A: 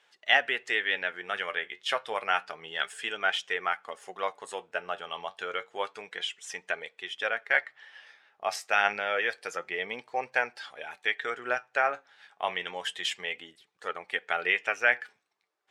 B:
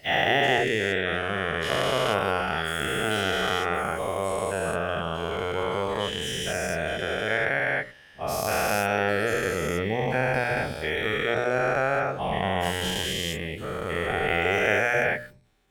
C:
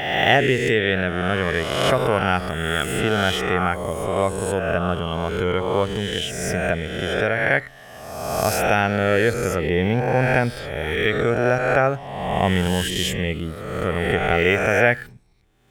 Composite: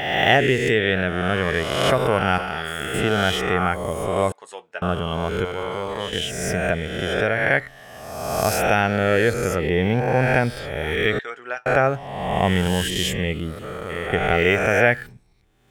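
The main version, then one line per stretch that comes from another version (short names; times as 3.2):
C
2.38–2.94 from B
4.32–4.82 from A
5.45–6.13 from B
11.19–11.66 from A
13.59–14.13 from B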